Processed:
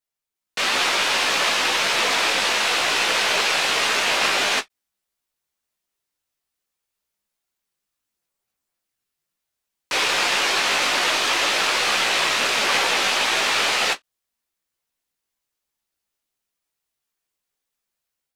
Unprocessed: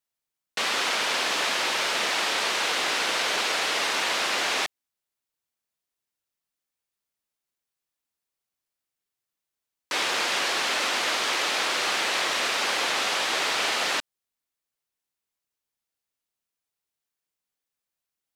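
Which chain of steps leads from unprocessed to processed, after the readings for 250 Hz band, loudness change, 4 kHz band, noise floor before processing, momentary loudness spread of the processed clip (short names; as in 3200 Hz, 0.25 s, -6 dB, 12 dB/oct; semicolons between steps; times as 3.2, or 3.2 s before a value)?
+4.5 dB, +5.5 dB, +5.0 dB, under -85 dBFS, 3 LU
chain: rattling part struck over -48 dBFS, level -20 dBFS; AGC gain up to 6 dB; chorus voices 6, 0.98 Hz, delay 17 ms, depth 3 ms; ending taper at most 570 dB/s; gain +2 dB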